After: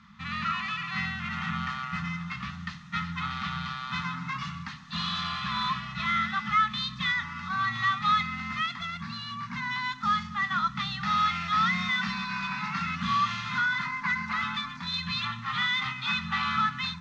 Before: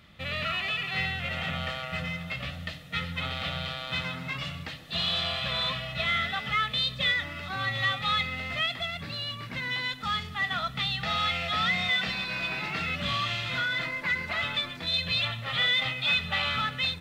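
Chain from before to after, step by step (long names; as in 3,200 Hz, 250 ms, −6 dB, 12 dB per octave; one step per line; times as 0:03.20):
drawn EQ curve 120 Hz 0 dB, 220 Hz +13 dB, 340 Hz −20 dB, 560 Hz −26 dB, 1,000 Hz +14 dB, 3,000 Hz −3 dB, 6,300 Hz +7 dB, 12,000 Hz −27 dB
level −4.5 dB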